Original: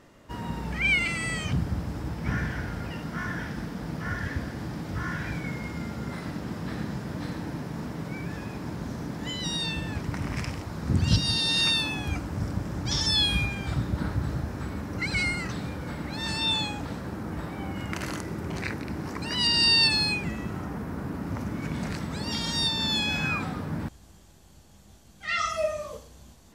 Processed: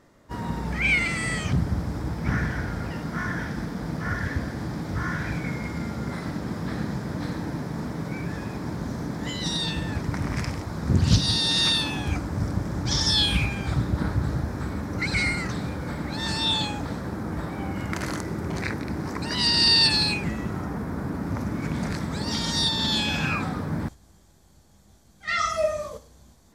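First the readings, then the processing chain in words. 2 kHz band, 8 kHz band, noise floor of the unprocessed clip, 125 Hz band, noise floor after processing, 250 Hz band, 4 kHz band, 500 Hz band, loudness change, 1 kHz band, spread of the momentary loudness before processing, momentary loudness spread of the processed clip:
+1.5 dB, +3.5 dB, −53 dBFS, +3.5 dB, −55 dBFS, +3.5 dB, +2.0 dB, +3.5 dB, +2.5 dB, +3.5 dB, 12 LU, 11 LU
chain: noise gate −38 dBFS, range −6 dB
parametric band 2,800 Hz −8 dB 0.31 octaves
highs frequency-modulated by the lows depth 0.41 ms
level +3.5 dB

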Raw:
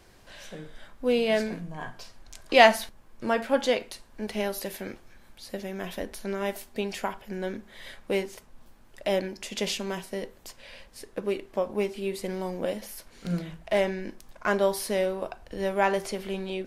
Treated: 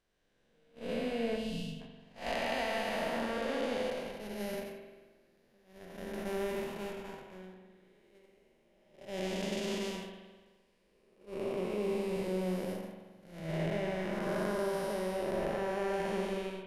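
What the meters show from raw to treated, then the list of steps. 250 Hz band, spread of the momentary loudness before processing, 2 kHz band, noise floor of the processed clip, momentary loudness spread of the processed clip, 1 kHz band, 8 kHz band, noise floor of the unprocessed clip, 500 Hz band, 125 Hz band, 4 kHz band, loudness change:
−5.0 dB, 18 LU, −10.0 dB, −70 dBFS, 14 LU, −10.5 dB, −10.5 dB, −55 dBFS, −8.0 dB, −3.5 dB, −9.5 dB, −7.5 dB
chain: spectrum smeared in time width 685 ms
noise gate −35 dBFS, range −32 dB
time-frequency box erased 0:01.36–0:01.80, 270–2,600 Hz
downward compressor 6 to 1, threshold −39 dBFS, peak gain reduction 11 dB
spring reverb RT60 1.3 s, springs 43 ms, chirp 60 ms, DRR 3 dB
level +6 dB

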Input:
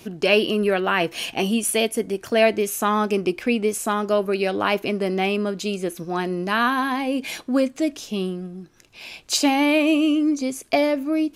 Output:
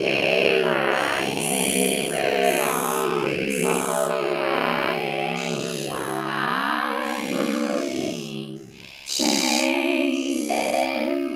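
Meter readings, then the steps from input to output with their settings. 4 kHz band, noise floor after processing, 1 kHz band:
+1.0 dB, −34 dBFS, 0.0 dB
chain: every bin's largest magnitude spread in time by 480 ms
on a send: flutter between parallel walls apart 7.7 metres, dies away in 0.32 s
on the sum: ring modulation 34 Hz
phase shifter 0.54 Hz, delay 4.2 ms, feedback 29%
level −7 dB

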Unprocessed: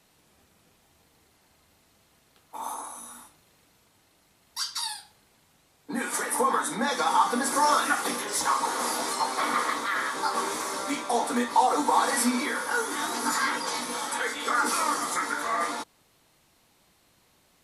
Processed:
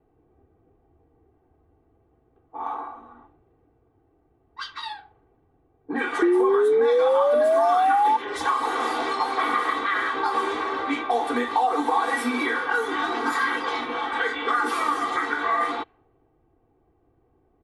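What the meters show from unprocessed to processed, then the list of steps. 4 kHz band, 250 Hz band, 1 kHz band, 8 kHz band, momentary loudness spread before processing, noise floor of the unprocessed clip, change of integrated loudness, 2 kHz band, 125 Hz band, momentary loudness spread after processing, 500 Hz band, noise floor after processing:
−2.0 dB, +3.5 dB, +3.0 dB, −14.5 dB, 13 LU, −64 dBFS, +3.5 dB, +3.5 dB, can't be measured, 14 LU, +10.0 dB, −65 dBFS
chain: low-pass that shuts in the quiet parts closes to 520 Hz, open at −23 dBFS
comb filter 2.6 ms, depth 74%
sound drawn into the spectrogram rise, 0:06.22–0:08.17, 340–890 Hz −14 dBFS
downward compressor 3 to 1, threshold −24 dBFS, peak gain reduction 10.5 dB
flat-topped bell 7,700 Hz −15 dB
level +4 dB

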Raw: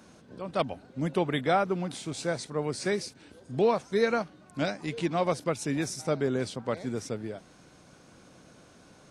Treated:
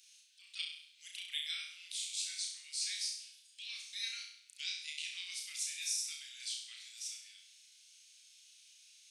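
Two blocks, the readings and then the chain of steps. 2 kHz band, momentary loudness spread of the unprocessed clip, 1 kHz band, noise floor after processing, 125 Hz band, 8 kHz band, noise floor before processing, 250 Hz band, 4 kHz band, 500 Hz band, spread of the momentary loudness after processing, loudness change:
−9.5 dB, 10 LU, below −35 dB, −64 dBFS, below −40 dB, +3.0 dB, −56 dBFS, below −40 dB, +2.5 dB, below −40 dB, 22 LU, −9.5 dB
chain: Butterworth high-pass 2,600 Hz 36 dB per octave
on a send: flutter between parallel walls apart 5.7 metres, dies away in 0.63 s

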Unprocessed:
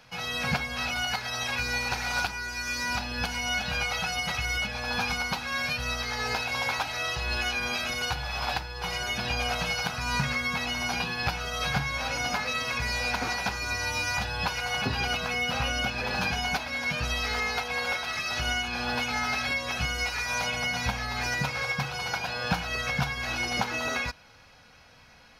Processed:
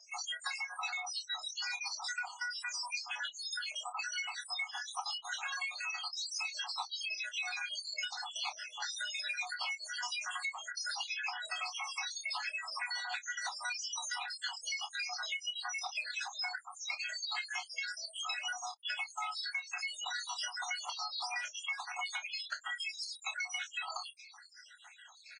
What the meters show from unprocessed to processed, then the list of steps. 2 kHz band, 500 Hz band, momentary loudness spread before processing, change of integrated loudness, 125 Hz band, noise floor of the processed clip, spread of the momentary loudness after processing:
−9.5 dB, −21.5 dB, 2 LU, −9.0 dB, below −40 dB, −57 dBFS, 3 LU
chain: time-frequency cells dropped at random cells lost 80%
in parallel at −8.5 dB: gain into a clipping stage and back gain 28.5 dB
on the sum: Butterworth high-pass 730 Hz 48 dB per octave
spectral tilt +2 dB per octave
on a send: ambience of single reflections 15 ms −16 dB, 26 ms −9.5 dB
on the sum: downward compressor 8 to 1, threshold −36 dBFS, peak gain reduction 14 dB
Ogg Vorbis 16 kbit/s 22,050 Hz

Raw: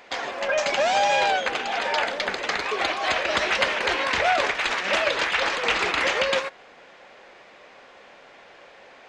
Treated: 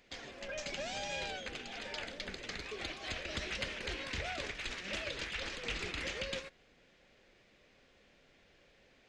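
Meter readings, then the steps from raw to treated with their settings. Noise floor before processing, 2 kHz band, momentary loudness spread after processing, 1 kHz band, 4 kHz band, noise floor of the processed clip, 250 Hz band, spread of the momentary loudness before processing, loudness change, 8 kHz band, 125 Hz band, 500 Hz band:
−50 dBFS, −17.5 dB, 5 LU, −23.5 dB, −14.0 dB, −67 dBFS, −10.5 dB, 5 LU, −17.0 dB, −12.5 dB, −2.5 dB, −18.5 dB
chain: guitar amp tone stack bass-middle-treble 10-0-1
level +8.5 dB

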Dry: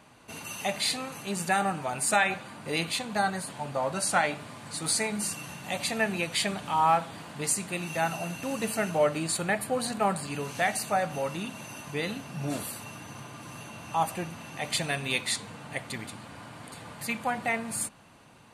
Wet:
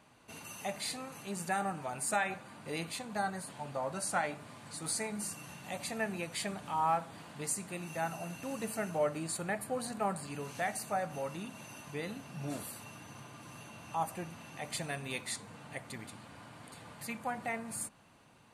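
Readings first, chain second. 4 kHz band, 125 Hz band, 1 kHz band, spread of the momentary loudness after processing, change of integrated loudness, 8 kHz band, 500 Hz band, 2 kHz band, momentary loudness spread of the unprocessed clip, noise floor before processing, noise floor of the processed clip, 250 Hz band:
−11.5 dB, −7.0 dB, −7.5 dB, 14 LU, −8.0 dB, −7.5 dB, −7.0 dB, −9.5 dB, 15 LU, −49 dBFS, −56 dBFS, −7.0 dB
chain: dynamic equaliser 3,300 Hz, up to −6 dB, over −44 dBFS, Q 1.1
level −7 dB

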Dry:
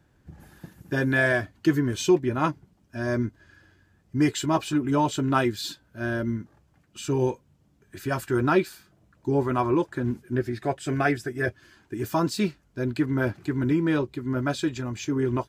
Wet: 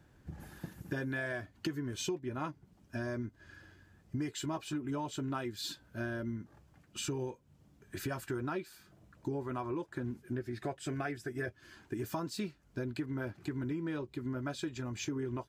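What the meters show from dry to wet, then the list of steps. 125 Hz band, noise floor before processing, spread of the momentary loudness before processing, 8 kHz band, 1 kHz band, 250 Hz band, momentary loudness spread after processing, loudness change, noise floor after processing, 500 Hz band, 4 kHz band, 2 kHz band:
−11.5 dB, −64 dBFS, 11 LU, −7.5 dB, −14.0 dB, −12.5 dB, 11 LU, −13.0 dB, −66 dBFS, −13.5 dB, −8.0 dB, −13.5 dB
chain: downward compressor 6 to 1, threshold −35 dBFS, peak gain reduction 19 dB

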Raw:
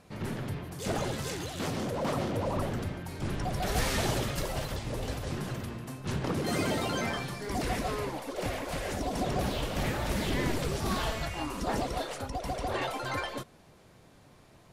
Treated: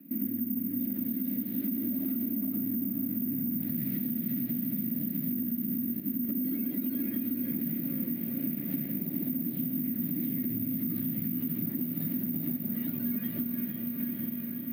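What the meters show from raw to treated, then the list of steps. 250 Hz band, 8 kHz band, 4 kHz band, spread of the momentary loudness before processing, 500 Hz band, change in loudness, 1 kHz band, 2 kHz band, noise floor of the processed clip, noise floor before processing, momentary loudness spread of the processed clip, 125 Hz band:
+6.0 dB, below −20 dB, below −20 dB, 6 LU, −15.5 dB, +2.0 dB, below −25 dB, −16.5 dB, −37 dBFS, −57 dBFS, 2 LU, −5.5 dB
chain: low shelf with overshoot 210 Hz +14 dB, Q 3
frequency shifter +110 Hz
low-pass filter 4,400 Hz 24 dB per octave
feedback delay with all-pass diffusion 464 ms, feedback 65%, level −5 dB
bad sample-rate conversion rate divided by 3×, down none, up zero stuff
drawn EQ curve 150 Hz 0 dB, 310 Hz +8 dB, 590 Hz +1 dB, 850 Hz −17 dB, 2,000 Hz +3 dB, 3,100 Hz −3 dB
sample-and-hold tremolo
brickwall limiter −5 dBFS, peak gain reduction 12 dB
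downward compressor 5 to 1, threshold −21 dBFS, peak gain reduction 10.5 dB
level −7 dB

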